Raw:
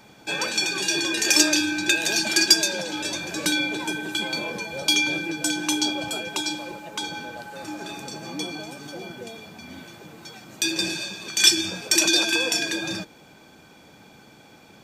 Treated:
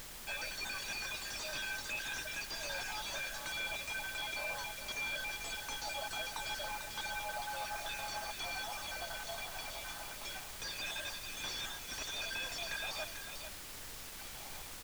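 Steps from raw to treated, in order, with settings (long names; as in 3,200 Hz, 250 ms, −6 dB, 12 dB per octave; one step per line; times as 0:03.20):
time-frequency cells dropped at random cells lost 35%
noise gate with hold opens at −40 dBFS
elliptic high-pass filter 600 Hz, stop band 40 dB
reversed playback
downward compressor 6 to 1, threshold −39 dBFS, peak gain reduction 25 dB
reversed playback
background noise brown −56 dBFS
bit-depth reduction 8 bits, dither triangular
on a send: single-tap delay 445 ms −9.5 dB
on the sum: slew-rate limiting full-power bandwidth 37 Hz
level +1.5 dB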